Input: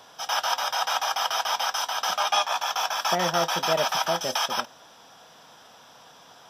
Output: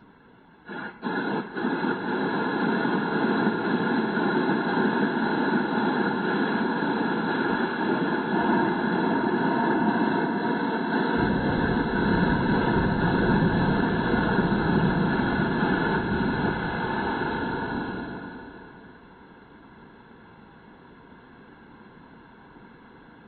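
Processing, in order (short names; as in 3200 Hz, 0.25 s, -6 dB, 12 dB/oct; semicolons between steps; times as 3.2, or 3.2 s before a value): whisperiser; wide varispeed 0.279×; bloom reverb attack 1.43 s, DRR -2.5 dB; gain -2.5 dB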